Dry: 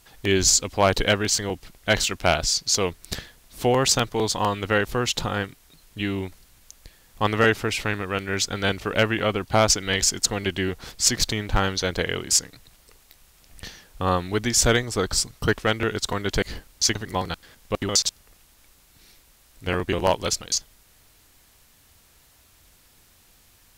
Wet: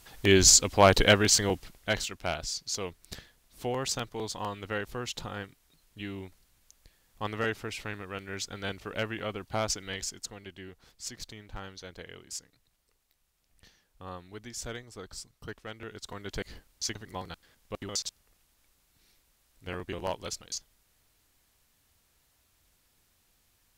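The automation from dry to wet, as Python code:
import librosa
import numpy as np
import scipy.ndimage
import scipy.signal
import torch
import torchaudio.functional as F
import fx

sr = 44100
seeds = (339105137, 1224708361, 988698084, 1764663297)

y = fx.gain(x, sr, db=fx.line((1.51, 0.0), (2.1, -12.0), (9.81, -12.0), (10.45, -20.0), (15.69, -20.0), (16.37, -12.5)))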